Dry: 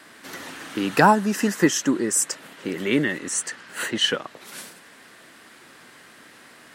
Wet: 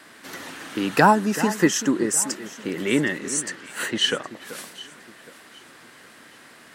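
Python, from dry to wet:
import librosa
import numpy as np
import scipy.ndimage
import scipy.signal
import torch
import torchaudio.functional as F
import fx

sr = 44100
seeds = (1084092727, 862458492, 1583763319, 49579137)

y = fx.echo_alternate(x, sr, ms=383, hz=1800.0, feedback_pct=56, wet_db=-13.0)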